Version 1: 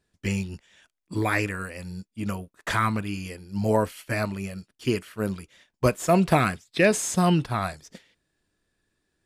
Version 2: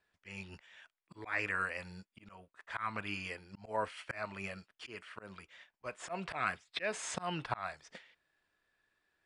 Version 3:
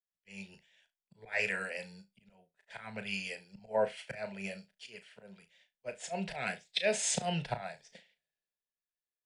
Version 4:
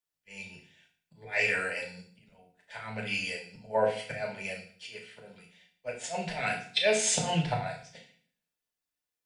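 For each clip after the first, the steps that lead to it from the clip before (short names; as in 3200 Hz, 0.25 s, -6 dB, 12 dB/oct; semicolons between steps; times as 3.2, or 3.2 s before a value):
Chebyshev low-pass 10000 Hz, order 10; three-band isolator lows -15 dB, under 590 Hz, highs -14 dB, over 3500 Hz; auto swell 0.346 s; gain +2 dB
fixed phaser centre 310 Hz, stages 6; on a send: flutter echo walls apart 6.1 m, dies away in 0.21 s; on the sum: three-band expander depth 70%; gain +4 dB
FDN reverb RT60 0.49 s, low-frequency decay 1.4×, high-frequency decay 1×, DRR -1 dB; Doppler distortion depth 0.11 ms; gain +2 dB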